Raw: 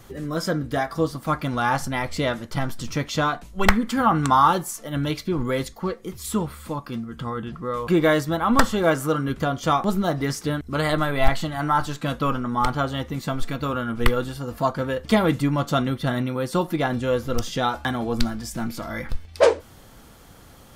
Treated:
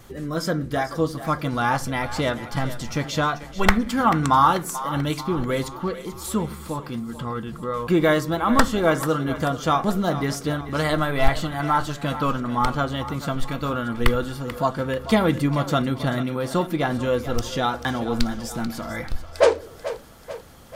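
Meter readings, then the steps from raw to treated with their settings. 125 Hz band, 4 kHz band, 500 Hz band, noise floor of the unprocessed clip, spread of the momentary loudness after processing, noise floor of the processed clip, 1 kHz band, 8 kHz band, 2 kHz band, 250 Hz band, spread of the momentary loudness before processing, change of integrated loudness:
+0.5 dB, +0.5 dB, +0.5 dB, −47 dBFS, 11 LU, −39 dBFS, +0.5 dB, +0.5 dB, +0.5 dB, +0.5 dB, 10 LU, 0.0 dB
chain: pitch vibrato 6.5 Hz 12 cents
echo with a time of its own for lows and highs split 390 Hz, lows 82 ms, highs 438 ms, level −13 dB

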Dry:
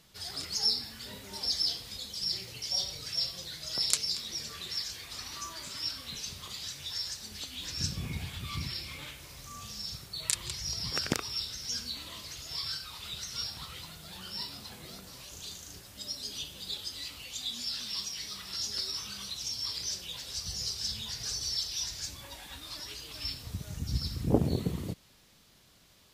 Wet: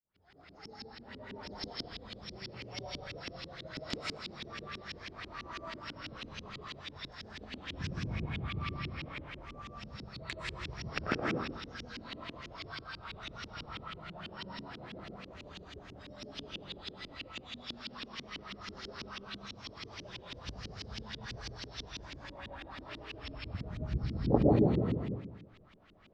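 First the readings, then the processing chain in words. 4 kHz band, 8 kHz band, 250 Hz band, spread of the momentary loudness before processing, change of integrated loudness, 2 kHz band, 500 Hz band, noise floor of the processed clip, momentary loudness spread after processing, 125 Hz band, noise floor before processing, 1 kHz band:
−12.0 dB, −21.5 dB, +3.0 dB, 13 LU, −5.5 dB, +2.0 dB, +4.5 dB, −55 dBFS, 12 LU, +0.5 dB, −61 dBFS, +4.0 dB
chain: fade in at the beginning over 1.63 s
comb and all-pass reverb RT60 1.1 s, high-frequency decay 0.85×, pre-delay 75 ms, DRR −3.5 dB
auto-filter low-pass saw up 6.1 Hz 260–3,000 Hz
level −3.5 dB

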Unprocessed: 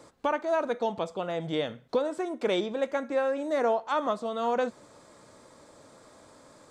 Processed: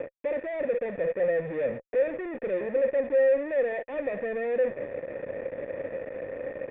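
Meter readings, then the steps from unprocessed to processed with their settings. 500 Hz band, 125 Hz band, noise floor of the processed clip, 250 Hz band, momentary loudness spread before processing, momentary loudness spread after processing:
+3.5 dB, can't be measured, −50 dBFS, −3.5 dB, 5 LU, 12 LU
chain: adaptive Wiener filter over 41 samples
reversed playback
downward compressor 5 to 1, threshold −37 dBFS, peak gain reduction 14 dB
reversed playback
fuzz pedal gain 65 dB, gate −57 dBFS
formant resonators in series e
level −5 dB

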